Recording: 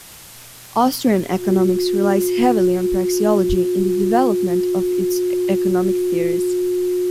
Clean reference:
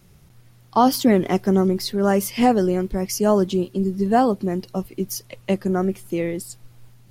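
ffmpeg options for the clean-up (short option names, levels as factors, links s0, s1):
-filter_complex "[0:a]adeclick=t=4,bandreject=f=360:w=30,asplit=3[s0][s1][s2];[s0]afade=t=out:st=3.48:d=0.02[s3];[s1]highpass=f=140:w=0.5412,highpass=f=140:w=1.3066,afade=t=in:st=3.48:d=0.02,afade=t=out:st=3.6:d=0.02[s4];[s2]afade=t=in:st=3.6:d=0.02[s5];[s3][s4][s5]amix=inputs=3:normalize=0,afwtdn=0.011"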